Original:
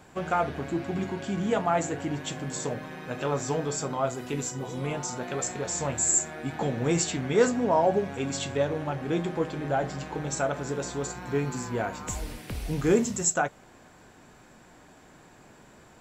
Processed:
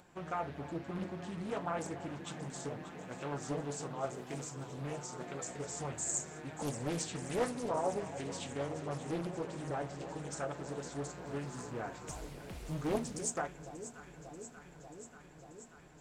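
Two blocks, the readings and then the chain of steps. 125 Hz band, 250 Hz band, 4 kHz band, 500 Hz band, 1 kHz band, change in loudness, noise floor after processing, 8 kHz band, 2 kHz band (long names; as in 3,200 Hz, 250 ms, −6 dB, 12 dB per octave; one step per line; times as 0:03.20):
−9.5 dB, −10.5 dB, −10.5 dB, −11.5 dB, −10.5 dB, −11.0 dB, −56 dBFS, −12.0 dB, −11.5 dB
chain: upward compression, threshold −48 dBFS
flanger 0.96 Hz, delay 5.4 ms, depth 1.8 ms, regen +63%
on a send: delay that swaps between a low-pass and a high-pass 293 ms, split 910 Hz, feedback 87%, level −12 dB
on the sum: highs frequency-modulated by the lows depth 0.78 ms
level −7 dB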